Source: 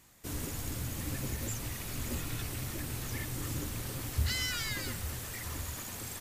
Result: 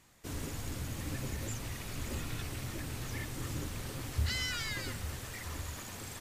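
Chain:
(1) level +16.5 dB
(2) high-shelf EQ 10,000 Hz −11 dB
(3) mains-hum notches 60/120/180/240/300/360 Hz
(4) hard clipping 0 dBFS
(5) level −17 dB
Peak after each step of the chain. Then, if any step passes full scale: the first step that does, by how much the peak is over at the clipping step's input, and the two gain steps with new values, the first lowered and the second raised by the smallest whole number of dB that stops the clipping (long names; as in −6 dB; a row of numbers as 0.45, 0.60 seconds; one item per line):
−2.5, −3.0, −4.0, −4.0, −21.0 dBFS
no step passes full scale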